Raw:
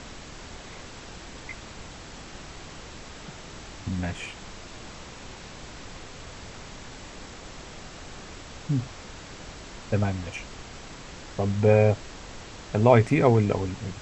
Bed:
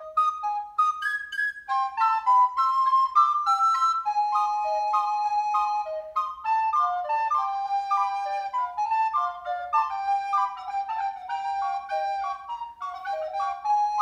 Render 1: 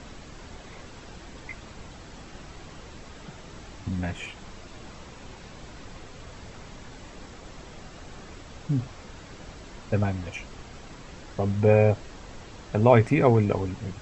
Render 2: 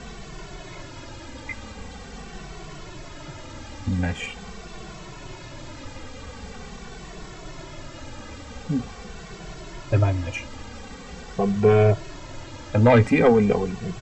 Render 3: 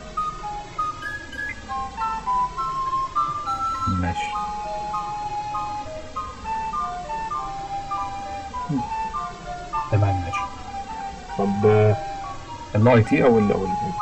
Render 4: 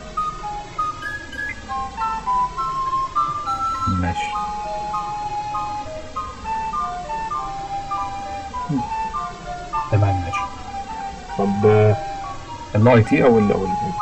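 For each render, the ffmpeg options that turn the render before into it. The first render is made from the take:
-af "afftdn=nr=6:nf=-44"
-filter_complex "[0:a]aeval=exprs='0.631*sin(PI/2*1.58*val(0)/0.631)':c=same,asplit=2[s0][s1];[s1]adelay=2.2,afreqshift=-0.44[s2];[s0][s2]amix=inputs=2:normalize=1"
-filter_complex "[1:a]volume=0.668[s0];[0:a][s0]amix=inputs=2:normalize=0"
-af "volume=1.33"

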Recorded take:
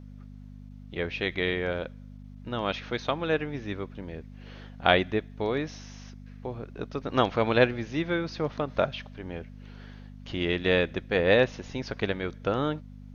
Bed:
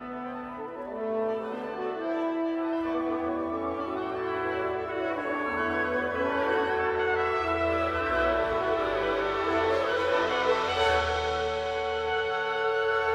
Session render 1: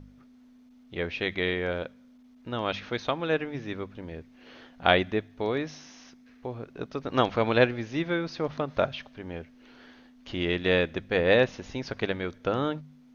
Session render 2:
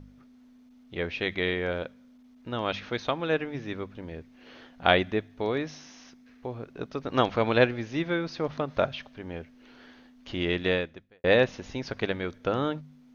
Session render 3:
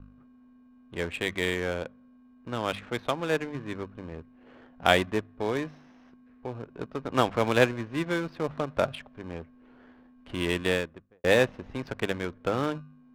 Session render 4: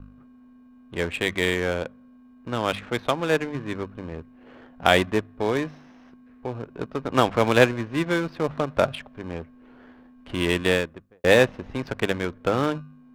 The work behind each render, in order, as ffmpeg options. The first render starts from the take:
-af "bandreject=f=50:t=h:w=4,bandreject=f=100:t=h:w=4,bandreject=f=150:t=h:w=4,bandreject=f=200:t=h:w=4"
-filter_complex "[0:a]asplit=2[s0][s1];[s0]atrim=end=11.24,asetpts=PTS-STARTPTS,afade=t=out:st=10.65:d=0.59:c=qua[s2];[s1]atrim=start=11.24,asetpts=PTS-STARTPTS,afade=t=in:d=0.004:c=hsin[s3];[s2][s3]concat=n=2:v=0:a=1"
-filter_complex "[0:a]acrossover=split=300[s0][s1];[s0]acrusher=samples=33:mix=1:aa=0.000001[s2];[s2][s1]amix=inputs=2:normalize=0,adynamicsmooth=sensitivity=6.5:basefreq=1200"
-af "volume=1.78,alimiter=limit=0.708:level=0:latency=1"

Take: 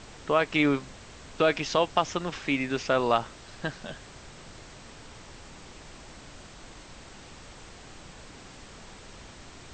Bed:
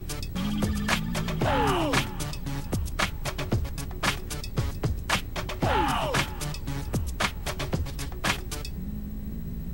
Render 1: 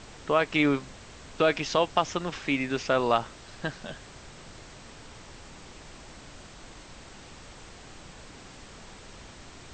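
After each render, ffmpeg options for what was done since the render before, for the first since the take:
-af anull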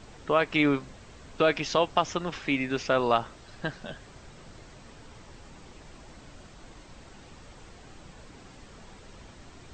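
-af "afftdn=nr=6:nf=-48"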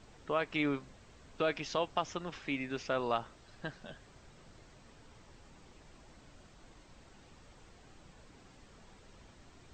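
-af "volume=0.355"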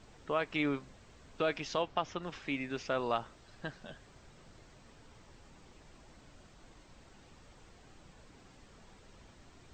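-filter_complex "[0:a]asettb=1/sr,asplit=3[s0][s1][s2];[s0]atrim=end=1.824[s3];[s1]atrim=start=1.82:end=2.23,asetpts=PTS-STARTPTS,afade=t=in:d=0.004:c=qsin,afade=t=out:st=0.406:d=0.004:c=qsin,lowpass=4800[s4];[s2]atrim=start=2.226[s5];[s3][s4]acrossfade=d=0.004:c1=hsin:c2=qsin[s6];[s6][s5]acrossfade=d=0.004:c1=qsin:c2=hsin"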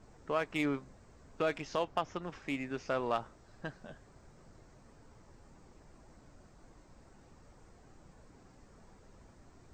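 -filter_complex "[0:a]acrossover=split=3900[s0][s1];[s0]adynamicsmooth=sensitivity=8:basefreq=2000[s2];[s1]flanger=delay=19.5:depth=5.7:speed=1.8[s3];[s2][s3]amix=inputs=2:normalize=0"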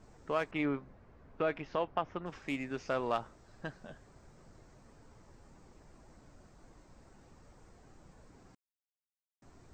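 -filter_complex "[0:a]asettb=1/sr,asplit=3[s0][s1][s2];[s0]atrim=end=0.514[s3];[s1]atrim=start=0.51:end=2.26,asetpts=PTS-STARTPTS,afade=t=in:d=0.004:c=qsin,afade=t=out:st=1.746:d=0.004:c=qsin,lowpass=2600[s4];[s2]atrim=start=2.256[s5];[s3][s4]acrossfade=d=0.004:c1=hsin:c2=qsin[s6];[s6][s5]acrossfade=d=0.004:c1=qsin:c2=hsin,asplit=3[s7][s8][s9];[s7]atrim=end=8.55,asetpts=PTS-STARTPTS,afade=t=out:st=8.546:d=0.004:c=hsin[s10];[s8]atrim=start=8.55:end=9.42,asetpts=PTS-STARTPTS,volume=0[s11];[s9]atrim=start=9.42,asetpts=PTS-STARTPTS,afade=t=in:d=0.004:c=hsin[s12];[s10][s11][s12]concat=n=3:v=0:a=1"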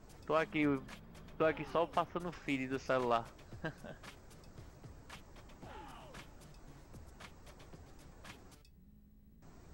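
-filter_complex "[1:a]volume=0.0422[s0];[0:a][s0]amix=inputs=2:normalize=0"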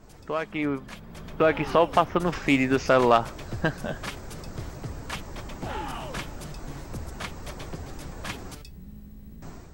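-filter_complex "[0:a]asplit=2[s0][s1];[s1]alimiter=level_in=2:limit=0.0631:level=0:latency=1:release=213,volume=0.501,volume=1.12[s2];[s0][s2]amix=inputs=2:normalize=0,dynaudnorm=f=860:g=3:m=3.76"

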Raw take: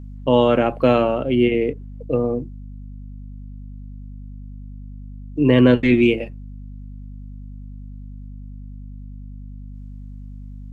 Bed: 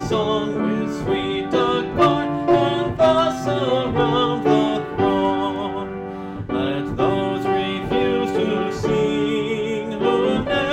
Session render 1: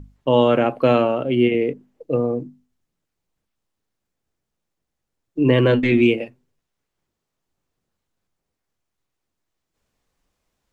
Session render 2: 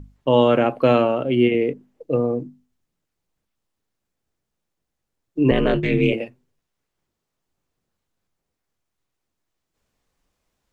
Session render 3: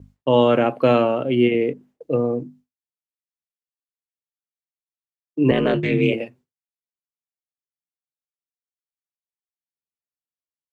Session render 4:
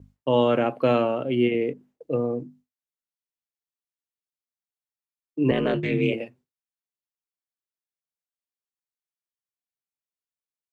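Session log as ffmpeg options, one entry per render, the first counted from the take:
-af "bandreject=f=50:t=h:w=6,bandreject=f=100:t=h:w=6,bandreject=f=150:t=h:w=6,bandreject=f=200:t=h:w=6,bandreject=f=250:t=h:w=6"
-filter_complex "[0:a]asettb=1/sr,asplit=3[s0][s1][s2];[s0]atrim=end=5.514[s3];[s1]atrim=start=5.51:end=6.13,asetpts=PTS-STARTPTS,afade=t=in:d=0.004:c=qsin,afade=t=out:st=0.616:d=0.004:c=qsin,aeval=exprs='val(0)*sin(2*PI*100*n/s)':c=same[s4];[s2]atrim=start=6.126[s5];[s3][s4]acrossfade=d=0.004:c1=hsin:c2=qsin[s6];[s6][s5]acrossfade=d=0.004:c1=qsin:c2=hsin"
-af "agate=range=0.0224:threshold=0.00631:ratio=3:detection=peak,highpass=76"
-af "volume=0.596"

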